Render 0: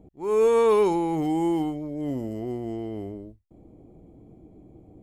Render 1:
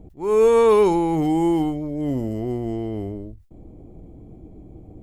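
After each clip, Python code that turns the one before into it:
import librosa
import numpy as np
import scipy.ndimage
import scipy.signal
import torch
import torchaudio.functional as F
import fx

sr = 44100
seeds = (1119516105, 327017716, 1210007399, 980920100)

y = fx.low_shelf(x, sr, hz=81.0, db=11.5)
y = fx.sustainer(y, sr, db_per_s=130.0)
y = y * librosa.db_to_amplitude(4.0)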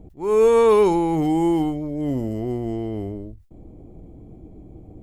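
y = x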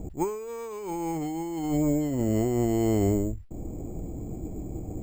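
y = np.repeat(scipy.signal.resample_poly(x, 1, 6), 6)[:len(x)]
y = fx.over_compress(y, sr, threshold_db=-29.0, ratio=-1.0)
y = fx.dynamic_eq(y, sr, hz=2100.0, q=0.7, threshold_db=-50.0, ratio=4.0, max_db=6)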